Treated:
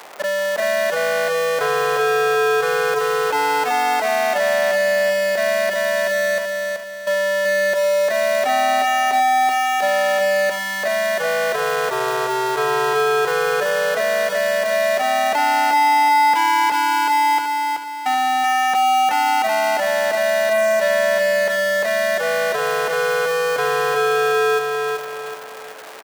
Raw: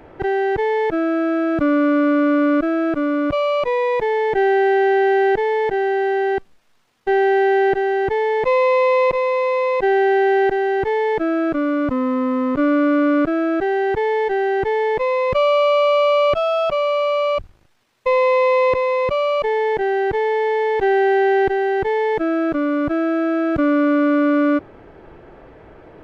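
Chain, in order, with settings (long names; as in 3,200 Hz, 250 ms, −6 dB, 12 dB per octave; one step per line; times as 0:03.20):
sub-harmonics by changed cycles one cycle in 2, inverted
high-pass filter 650 Hz 12 dB per octave
high-shelf EQ 2,700 Hz +5 dB
in parallel at +1.5 dB: downward compressor, threshold −29 dBFS, peak gain reduction 14 dB
on the sum: soft clipping −13 dBFS, distortion −14 dB
on a send: repeating echo 380 ms, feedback 40%, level −3.5 dB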